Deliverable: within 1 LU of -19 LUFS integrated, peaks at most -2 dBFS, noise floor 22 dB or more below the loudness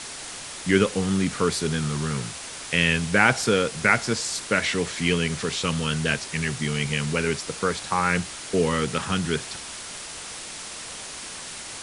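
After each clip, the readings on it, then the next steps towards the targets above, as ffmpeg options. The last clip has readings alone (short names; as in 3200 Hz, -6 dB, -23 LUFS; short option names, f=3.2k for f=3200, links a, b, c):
noise floor -37 dBFS; noise floor target -47 dBFS; loudness -25.0 LUFS; peak -3.5 dBFS; loudness target -19.0 LUFS
-> -af "afftdn=nr=10:nf=-37"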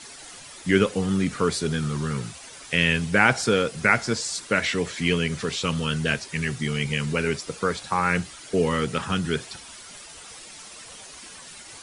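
noise floor -44 dBFS; noise floor target -46 dBFS
-> -af "afftdn=nr=6:nf=-44"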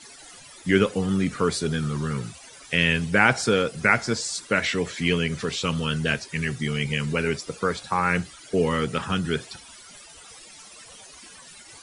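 noise floor -47 dBFS; loudness -24.5 LUFS; peak -4.0 dBFS; loudness target -19.0 LUFS
-> -af "volume=5.5dB,alimiter=limit=-2dB:level=0:latency=1"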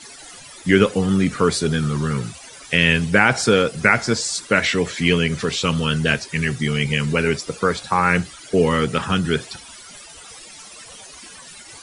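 loudness -19.0 LUFS; peak -2.0 dBFS; noise floor -41 dBFS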